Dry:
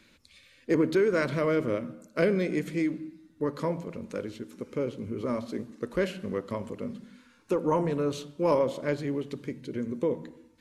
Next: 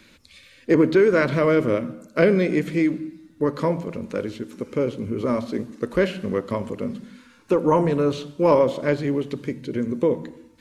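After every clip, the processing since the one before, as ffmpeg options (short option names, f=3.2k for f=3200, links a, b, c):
-filter_complex "[0:a]acrossover=split=4600[a][b];[b]acompressor=threshold=-56dB:ratio=4:attack=1:release=60[c];[a][c]amix=inputs=2:normalize=0,volume=7.5dB"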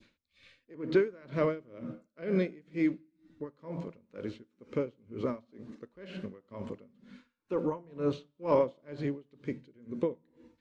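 -af "lowpass=5k,adynamicequalizer=threshold=0.0224:dfrequency=1700:dqfactor=0.7:tfrequency=1700:tqfactor=0.7:attack=5:release=100:ratio=0.375:range=1.5:mode=cutabove:tftype=bell,aeval=exprs='val(0)*pow(10,-28*(0.5-0.5*cos(2*PI*2.1*n/s))/20)':c=same,volume=-6.5dB"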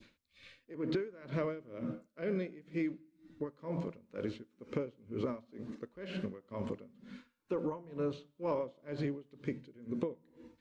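-af "acompressor=threshold=-34dB:ratio=10,volume=2.5dB"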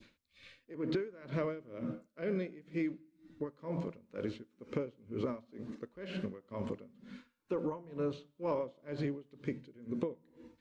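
-af anull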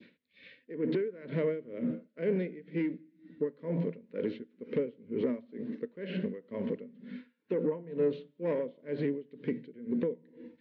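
-filter_complex "[0:a]asplit=2[a][b];[b]aeval=exprs='0.1*sin(PI/2*2.51*val(0)/0.1)':c=same,volume=-5.5dB[c];[a][c]amix=inputs=2:normalize=0,highpass=170,equalizer=f=170:t=q:w=4:g=8,equalizer=f=250:t=q:w=4:g=7,equalizer=f=450:t=q:w=4:g=9,equalizer=f=800:t=q:w=4:g=-8,equalizer=f=1.2k:t=q:w=4:g=-10,equalizer=f=1.9k:t=q:w=4:g=6,lowpass=f=3.8k:w=0.5412,lowpass=f=3.8k:w=1.3066,volume=-8dB"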